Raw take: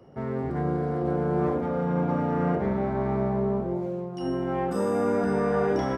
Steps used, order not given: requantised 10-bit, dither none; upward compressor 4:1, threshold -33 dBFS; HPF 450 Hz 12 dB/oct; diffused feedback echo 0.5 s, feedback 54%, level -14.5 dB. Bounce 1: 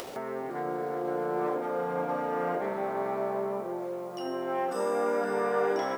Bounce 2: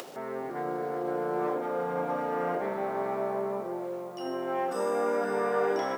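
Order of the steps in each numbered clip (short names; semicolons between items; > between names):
HPF > requantised > diffused feedback echo > upward compressor; diffused feedback echo > requantised > upward compressor > HPF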